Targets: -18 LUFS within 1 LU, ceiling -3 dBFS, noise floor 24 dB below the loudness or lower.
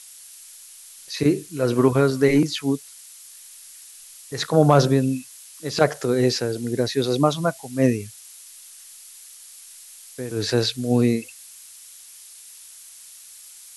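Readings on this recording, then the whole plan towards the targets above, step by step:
noise floor -45 dBFS; noise floor target -46 dBFS; loudness -21.5 LUFS; peak level -2.5 dBFS; loudness target -18.0 LUFS
-> noise reduction 6 dB, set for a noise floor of -45 dBFS; trim +3.5 dB; peak limiter -3 dBFS

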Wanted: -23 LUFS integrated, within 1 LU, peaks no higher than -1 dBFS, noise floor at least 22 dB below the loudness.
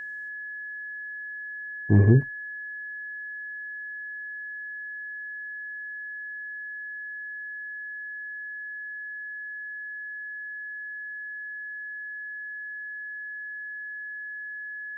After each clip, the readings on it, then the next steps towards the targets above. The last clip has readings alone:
steady tone 1.7 kHz; tone level -34 dBFS; loudness -31.5 LUFS; peak level -6.0 dBFS; loudness target -23.0 LUFS
-> band-stop 1.7 kHz, Q 30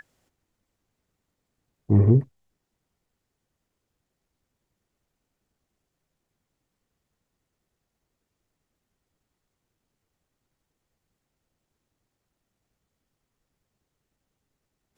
steady tone not found; loudness -20.5 LUFS; peak level -6.0 dBFS; loudness target -23.0 LUFS
-> trim -2.5 dB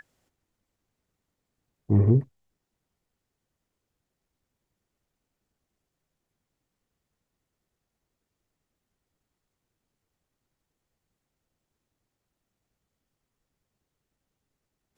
loudness -23.0 LUFS; peak level -8.5 dBFS; noise floor -85 dBFS

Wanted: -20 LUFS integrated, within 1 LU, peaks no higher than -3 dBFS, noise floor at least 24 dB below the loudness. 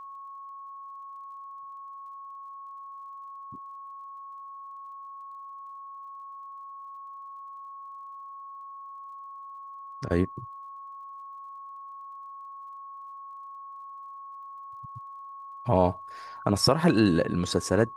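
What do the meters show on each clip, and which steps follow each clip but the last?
tick rate 27 per s; steady tone 1.1 kHz; tone level -40 dBFS; loudness -33.0 LUFS; peak level -7.0 dBFS; loudness target -20.0 LUFS
-> de-click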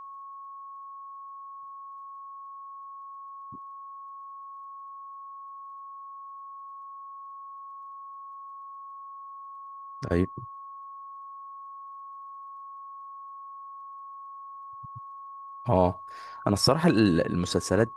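tick rate 0 per s; steady tone 1.1 kHz; tone level -40 dBFS
-> band-stop 1.1 kHz, Q 30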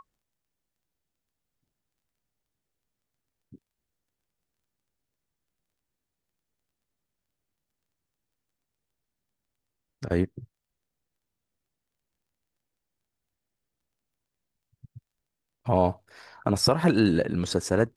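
steady tone not found; loudness -25.5 LUFS; peak level -7.5 dBFS; loudness target -20.0 LUFS
-> trim +5.5 dB; peak limiter -3 dBFS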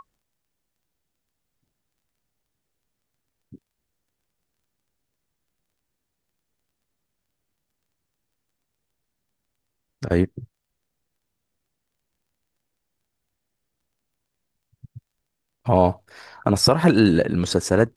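loudness -20.0 LUFS; peak level -3.0 dBFS; noise floor -80 dBFS

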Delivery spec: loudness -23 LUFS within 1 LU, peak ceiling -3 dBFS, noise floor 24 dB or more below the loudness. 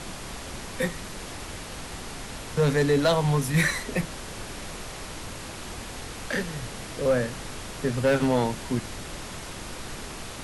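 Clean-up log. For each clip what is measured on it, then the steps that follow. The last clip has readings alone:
clipped samples 0.4%; clipping level -15.0 dBFS; noise floor -39 dBFS; noise floor target -53 dBFS; loudness -28.5 LUFS; peak level -15.0 dBFS; loudness target -23.0 LUFS
-> clip repair -15 dBFS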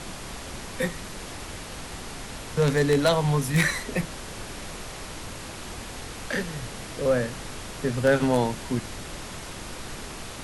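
clipped samples 0.0%; noise floor -39 dBFS; noise floor target -53 dBFS
-> noise print and reduce 14 dB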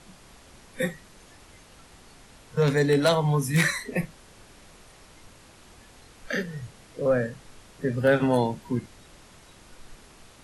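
noise floor -52 dBFS; loudness -25.5 LUFS; peak level -6.0 dBFS; loudness target -23.0 LUFS
-> trim +2.5 dB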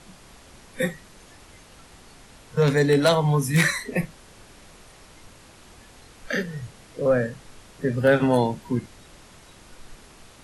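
loudness -23.0 LUFS; peak level -3.5 dBFS; noise floor -50 dBFS

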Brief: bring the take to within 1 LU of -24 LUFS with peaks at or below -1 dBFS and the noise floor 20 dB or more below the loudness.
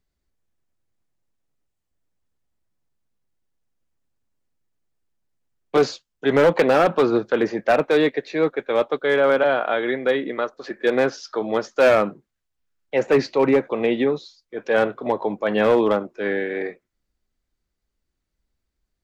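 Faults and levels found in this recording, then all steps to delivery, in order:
clipped samples 1.3%; clipping level -10.0 dBFS; loudness -20.5 LUFS; peak level -10.0 dBFS; loudness target -24.0 LUFS
-> clip repair -10 dBFS; trim -3.5 dB

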